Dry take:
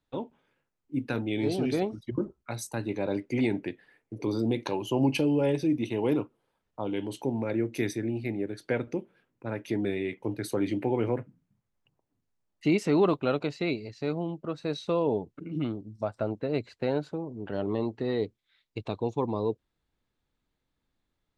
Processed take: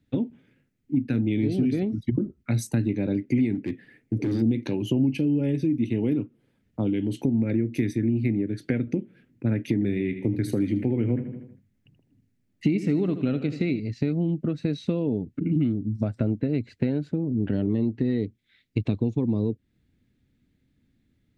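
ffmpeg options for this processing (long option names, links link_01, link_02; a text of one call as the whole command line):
ffmpeg -i in.wav -filter_complex "[0:a]asplit=3[link_01][link_02][link_03];[link_01]afade=type=out:start_time=3.54:duration=0.02[link_04];[link_02]asoftclip=type=hard:threshold=-31.5dB,afade=type=in:start_time=3.54:duration=0.02,afade=type=out:start_time=4.41:duration=0.02[link_05];[link_03]afade=type=in:start_time=4.41:duration=0.02[link_06];[link_04][link_05][link_06]amix=inputs=3:normalize=0,asettb=1/sr,asplit=3[link_07][link_08][link_09];[link_07]atrim=end=9.734[link_10];[link_08]atrim=start=9.73:end=13.8,asetpts=PTS-STARTPTS,afade=type=in:duration=0.004:curve=qsin,afade=type=out:start_time=4.066:duration=0.004:curve=qsin,aecho=1:1:79|158|237|316|395:0.224|0.103|0.0474|0.0218|0.01,atrim=end_sample=179487[link_11];[link_09]atrim=start=13.796[link_12];[link_10][link_11]acrossfade=duration=0.004:curve1=hsin:curve2=qsin[link_13];[link_13][link_12]acrossfade=duration=0.004:curve1=qsin:curve2=hsin,equalizer=frequency=250:width_type=o:width=1:gain=11,equalizer=frequency=1000:width_type=o:width=1:gain=-11,equalizer=frequency=2000:width_type=o:width=1:gain=8,acompressor=threshold=-31dB:ratio=4,equalizer=frequency=100:width=0.59:gain=14,volume=2.5dB" out.wav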